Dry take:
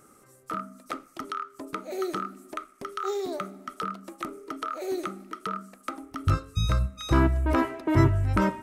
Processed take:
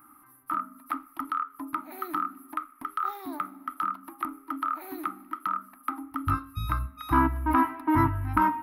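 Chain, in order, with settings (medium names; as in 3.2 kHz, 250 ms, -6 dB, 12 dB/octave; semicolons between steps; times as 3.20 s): FFT filter 100 Hz 0 dB, 200 Hz -6 dB, 290 Hz +13 dB, 450 Hz -24 dB, 920 Hz +14 dB, 5.1 kHz -8 dB, 7.5 kHz -22 dB, 11 kHz +14 dB; trim -6 dB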